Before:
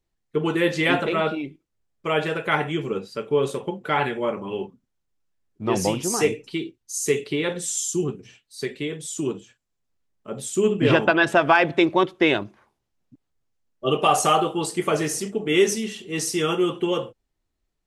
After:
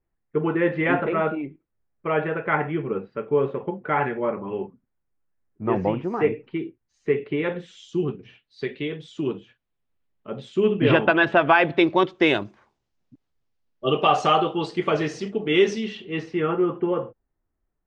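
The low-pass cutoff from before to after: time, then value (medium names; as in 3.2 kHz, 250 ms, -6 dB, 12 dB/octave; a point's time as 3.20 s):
low-pass 24 dB/octave
7.17 s 2.1 kHz
8.08 s 3.6 kHz
11.53 s 3.6 kHz
12.37 s 8 kHz
14.18 s 4.4 kHz
15.91 s 4.4 kHz
16.56 s 1.8 kHz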